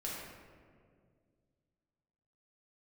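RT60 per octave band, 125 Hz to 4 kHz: 2.8 s, 2.7 s, 2.4 s, 1.7 s, 1.5 s, 0.95 s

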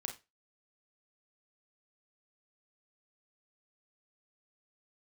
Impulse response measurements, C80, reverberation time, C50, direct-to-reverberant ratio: 18.5 dB, 0.25 s, 11.0 dB, 3.0 dB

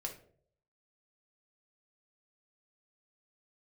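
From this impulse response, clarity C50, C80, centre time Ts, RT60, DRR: 9.5 dB, 14.5 dB, 16 ms, 0.60 s, 1.0 dB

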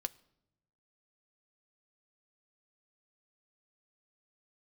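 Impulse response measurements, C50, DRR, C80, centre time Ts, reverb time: 23.0 dB, 11.0 dB, 25.0 dB, 2 ms, no single decay rate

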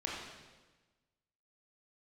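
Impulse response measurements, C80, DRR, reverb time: 2.5 dB, -4.0 dB, 1.2 s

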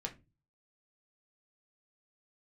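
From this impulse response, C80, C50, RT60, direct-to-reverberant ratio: 22.5 dB, 15.5 dB, 0.25 s, 1.5 dB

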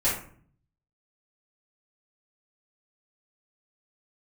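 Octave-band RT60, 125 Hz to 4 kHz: 0.95 s, 0.80 s, 0.55 s, 0.50 s, 0.45 s, 0.30 s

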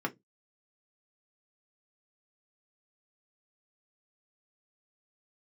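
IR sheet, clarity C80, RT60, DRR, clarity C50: 32.0 dB, 0.15 s, 1.0 dB, 22.0 dB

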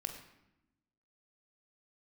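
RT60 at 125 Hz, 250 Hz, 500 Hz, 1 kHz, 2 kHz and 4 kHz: 1.3 s, 1.4 s, 0.90 s, 0.85 s, 0.85 s, 0.65 s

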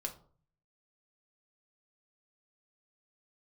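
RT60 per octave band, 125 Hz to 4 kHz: 0.80 s, 0.60 s, 0.50 s, 0.45 s, 0.30 s, 0.25 s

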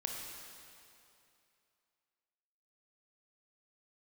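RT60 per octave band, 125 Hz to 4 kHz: 2.6 s, 2.6 s, 2.7 s, 2.7 s, 2.5 s, 2.4 s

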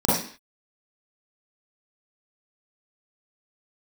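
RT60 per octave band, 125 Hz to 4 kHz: 0.35 s, 0.45 s, 0.45 s, 0.45 s, 0.55 s, no reading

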